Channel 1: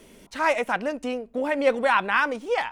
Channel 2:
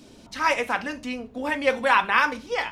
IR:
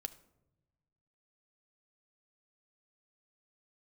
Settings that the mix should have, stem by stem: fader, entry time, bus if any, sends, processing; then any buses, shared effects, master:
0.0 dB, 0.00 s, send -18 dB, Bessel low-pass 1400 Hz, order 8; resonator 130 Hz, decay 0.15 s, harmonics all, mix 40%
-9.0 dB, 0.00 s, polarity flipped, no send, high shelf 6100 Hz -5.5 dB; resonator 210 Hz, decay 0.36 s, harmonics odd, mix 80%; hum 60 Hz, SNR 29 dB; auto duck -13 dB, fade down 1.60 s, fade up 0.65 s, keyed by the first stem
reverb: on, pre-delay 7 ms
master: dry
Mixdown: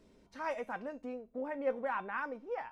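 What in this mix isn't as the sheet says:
stem 1 0.0 dB -> -11.0 dB; stem 2: missing high shelf 6100 Hz -5.5 dB

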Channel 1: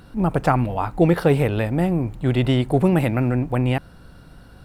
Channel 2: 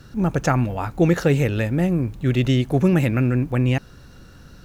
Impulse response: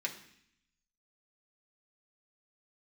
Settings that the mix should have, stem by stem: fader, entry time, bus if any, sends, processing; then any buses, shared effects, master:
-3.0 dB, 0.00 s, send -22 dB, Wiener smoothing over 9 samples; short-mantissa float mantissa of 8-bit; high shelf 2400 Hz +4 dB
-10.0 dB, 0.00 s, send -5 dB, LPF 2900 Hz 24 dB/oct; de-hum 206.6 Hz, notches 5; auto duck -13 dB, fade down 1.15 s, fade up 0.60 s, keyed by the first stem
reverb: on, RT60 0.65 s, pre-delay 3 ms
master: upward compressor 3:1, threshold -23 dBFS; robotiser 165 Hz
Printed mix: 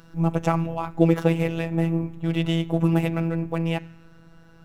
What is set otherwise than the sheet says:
stem 2: missing LPF 2900 Hz 24 dB/oct; master: missing upward compressor 3:1, threshold -23 dBFS

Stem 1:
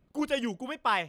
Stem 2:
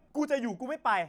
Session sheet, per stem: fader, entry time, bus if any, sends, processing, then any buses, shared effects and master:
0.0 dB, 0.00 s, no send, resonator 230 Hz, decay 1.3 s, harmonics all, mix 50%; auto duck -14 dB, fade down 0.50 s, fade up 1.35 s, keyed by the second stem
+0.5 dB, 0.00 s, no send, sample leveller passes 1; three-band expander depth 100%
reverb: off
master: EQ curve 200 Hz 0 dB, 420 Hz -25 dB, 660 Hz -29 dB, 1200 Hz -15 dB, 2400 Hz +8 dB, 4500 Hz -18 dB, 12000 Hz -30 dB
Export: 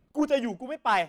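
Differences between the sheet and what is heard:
stem 1 0.0 dB -> +7.5 dB; master: missing EQ curve 200 Hz 0 dB, 420 Hz -25 dB, 660 Hz -29 dB, 1200 Hz -15 dB, 2400 Hz +8 dB, 4500 Hz -18 dB, 12000 Hz -30 dB

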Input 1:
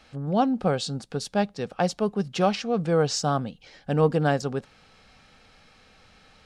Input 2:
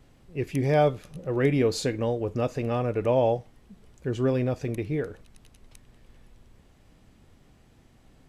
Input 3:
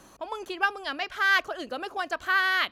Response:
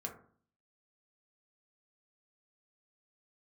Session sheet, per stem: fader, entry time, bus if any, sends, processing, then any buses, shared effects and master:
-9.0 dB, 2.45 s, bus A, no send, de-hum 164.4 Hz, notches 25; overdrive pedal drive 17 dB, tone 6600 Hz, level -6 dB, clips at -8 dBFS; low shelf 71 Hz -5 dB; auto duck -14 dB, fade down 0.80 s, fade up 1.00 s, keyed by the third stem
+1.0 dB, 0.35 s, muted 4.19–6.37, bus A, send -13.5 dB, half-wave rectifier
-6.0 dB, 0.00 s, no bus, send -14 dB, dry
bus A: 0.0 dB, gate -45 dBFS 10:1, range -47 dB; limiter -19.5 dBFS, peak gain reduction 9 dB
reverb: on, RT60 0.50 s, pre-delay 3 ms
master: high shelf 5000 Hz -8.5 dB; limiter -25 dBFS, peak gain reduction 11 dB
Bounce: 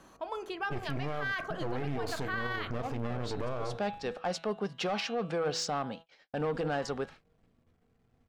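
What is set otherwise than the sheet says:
stem 2: send -13.5 dB -> -19.5 dB; reverb return +10.0 dB

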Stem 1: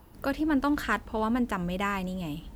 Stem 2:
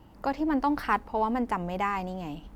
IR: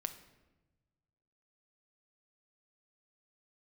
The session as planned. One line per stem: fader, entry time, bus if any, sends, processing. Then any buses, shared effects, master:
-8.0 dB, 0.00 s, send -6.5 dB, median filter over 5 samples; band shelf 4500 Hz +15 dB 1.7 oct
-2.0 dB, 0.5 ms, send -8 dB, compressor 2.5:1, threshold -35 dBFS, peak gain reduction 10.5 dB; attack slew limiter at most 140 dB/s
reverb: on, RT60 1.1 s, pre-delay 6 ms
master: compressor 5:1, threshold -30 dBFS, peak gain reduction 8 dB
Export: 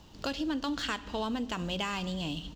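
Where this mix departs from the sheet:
stem 2 -2.0 dB -> -11.0 dB; reverb return +7.5 dB

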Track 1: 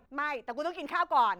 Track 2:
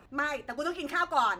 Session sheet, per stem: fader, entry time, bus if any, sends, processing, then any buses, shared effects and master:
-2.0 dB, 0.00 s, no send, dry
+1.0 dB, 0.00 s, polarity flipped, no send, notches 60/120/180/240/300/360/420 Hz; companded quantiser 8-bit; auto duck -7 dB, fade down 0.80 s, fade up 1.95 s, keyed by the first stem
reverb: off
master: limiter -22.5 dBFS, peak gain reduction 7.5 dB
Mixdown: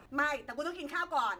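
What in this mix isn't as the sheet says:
stem 1 -2.0 dB -> -13.0 dB; master: missing limiter -22.5 dBFS, peak gain reduction 7.5 dB

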